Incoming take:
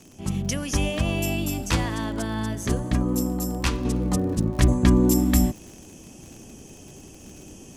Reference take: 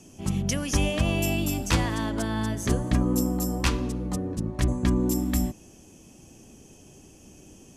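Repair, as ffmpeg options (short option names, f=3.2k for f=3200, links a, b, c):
-af "adeclick=t=4,asetnsamples=n=441:p=0,asendcmd='3.85 volume volume -6dB',volume=0dB"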